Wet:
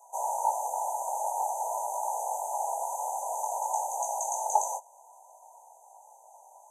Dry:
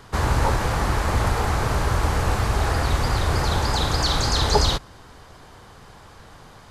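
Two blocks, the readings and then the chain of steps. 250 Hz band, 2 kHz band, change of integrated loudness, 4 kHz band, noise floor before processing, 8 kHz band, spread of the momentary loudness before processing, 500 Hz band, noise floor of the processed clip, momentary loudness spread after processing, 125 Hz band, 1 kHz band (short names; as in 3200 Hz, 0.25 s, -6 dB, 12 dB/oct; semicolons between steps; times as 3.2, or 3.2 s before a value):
under -40 dB, under -40 dB, -9.0 dB, under -40 dB, -47 dBFS, -1.5 dB, 3 LU, -9.0 dB, -56 dBFS, 4 LU, under -40 dB, -2.5 dB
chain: FFT band-reject 1000–6000 Hz; steep high-pass 640 Hz 48 dB/oct; chorus 0.51 Hz, delay 16.5 ms, depth 5.9 ms; gain +2.5 dB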